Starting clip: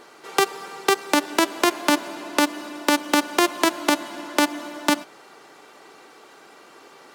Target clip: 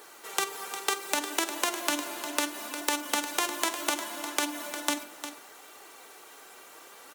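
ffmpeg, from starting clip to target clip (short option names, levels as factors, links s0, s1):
-filter_complex "[0:a]aemphasis=mode=production:type=bsi,acrossover=split=9500[s0][s1];[s1]acompressor=threshold=0.0562:ratio=4:attack=1:release=60[s2];[s0][s2]amix=inputs=2:normalize=0,equalizer=f=4800:t=o:w=0.34:g=-5,bandreject=f=50:t=h:w=6,bandreject=f=100:t=h:w=6,bandreject=f=150:t=h:w=6,bandreject=f=200:t=h:w=6,bandreject=f=250:t=h:w=6,bandreject=f=300:t=h:w=6,bandreject=f=350:t=h:w=6,bandreject=f=400:t=h:w=6,acompressor=threshold=0.1:ratio=6,flanger=delay=2.2:depth=6.3:regen=57:speed=0.69:shape=triangular,acrusher=bits=9:mix=0:aa=0.000001,asplit=2[s3][s4];[s4]adelay=48,volume=0.224[s5];[s3][s5]amix=inputs=2:normalize=0,asplit=2[s6][s7];[s7]aecho=0:1:354:0.299[s8];[s6][s8]amix=inputs=2:normalize=0"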